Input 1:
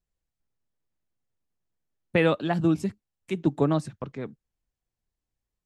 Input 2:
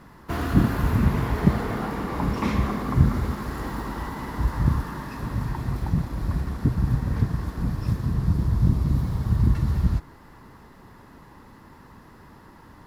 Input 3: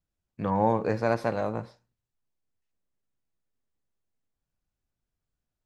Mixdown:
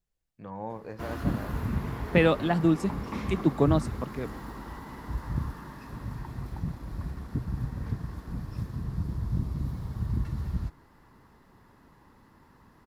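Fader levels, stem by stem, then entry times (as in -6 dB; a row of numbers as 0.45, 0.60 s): 0.0, -9.5, -13.5 dB; 0.00, 0.70, 0.00 s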